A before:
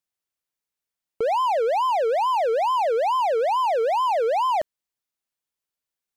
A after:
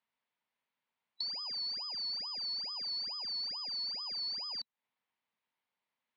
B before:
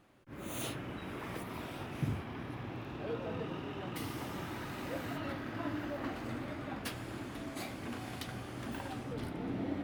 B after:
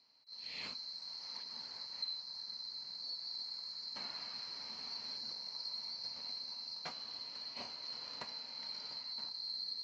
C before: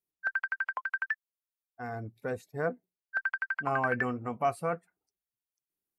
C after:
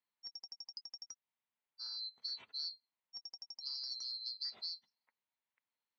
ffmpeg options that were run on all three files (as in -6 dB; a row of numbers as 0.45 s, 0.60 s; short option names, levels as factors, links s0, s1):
-af "afftfilt=real='real(if(lt(b,736),b+184*(1-2*mod(floor(b/184),2)),b),0)':imag='imag(if(lt(b,736),b+184*(1-2*mod(floor(b/184),2)),b),0)':win_size=2048:overlap=0.75,acompressor=threshold=0.0178:ratio=3,highpass=130,equalizer=f=230:t=q:w=4:g=5,equalizer=f=340:t=q:w=4:g=-6,equalizer=f=940:t=q:w=4:g=8,equalizer=f=2100:t=q:w=4:g=4,lowpass=f=3700:w=0.5412,lowpass=f=3700:w=1.3066,volume=1.33"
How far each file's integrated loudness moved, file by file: -13.5 LU, -1.5 LU, -10.0 LU